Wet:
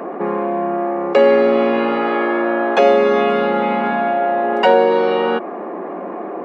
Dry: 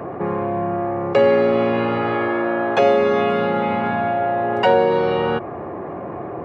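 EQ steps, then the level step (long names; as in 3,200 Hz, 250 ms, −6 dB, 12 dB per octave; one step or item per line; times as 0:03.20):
linear-phase brick-wall high-pass 180 Hz
+3.0 dB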